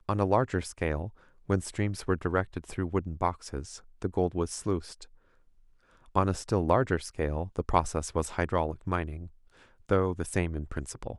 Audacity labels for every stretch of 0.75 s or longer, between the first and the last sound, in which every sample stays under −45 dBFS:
5.050000	6.150000	silence